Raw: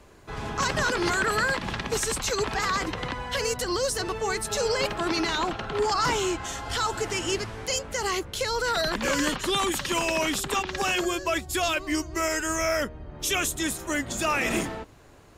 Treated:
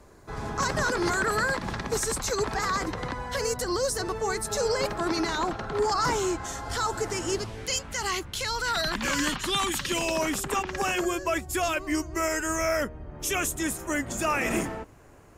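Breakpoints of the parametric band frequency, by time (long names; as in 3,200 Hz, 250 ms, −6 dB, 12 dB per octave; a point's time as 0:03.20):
parametric band −9.5 dB 0.79 octaves
0:07.33 2,900 Hz
0:07.80 490 Hz
0:09.74 490 Hz
0:10.31 3,800 Hz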